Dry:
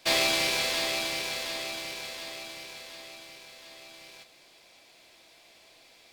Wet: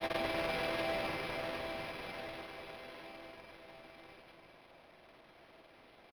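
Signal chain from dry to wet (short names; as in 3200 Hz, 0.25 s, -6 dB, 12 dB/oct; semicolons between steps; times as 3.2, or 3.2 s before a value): half-waves squared off; LPF 9700 Hz 24 dB/oct; high shelf 2100 Hz -7 dB; compressor 2:1, threshold -29 dBFS, peak gain reduction 5 dB; companded quantiser 4-bit; grains 0.1 s, grains 20/s, spray 0.1 s, pitch spread up and down by 0 st; echo 0.337 s -7.5 dB; decimation joined by straight lines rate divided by 6×; gain -5.5 dB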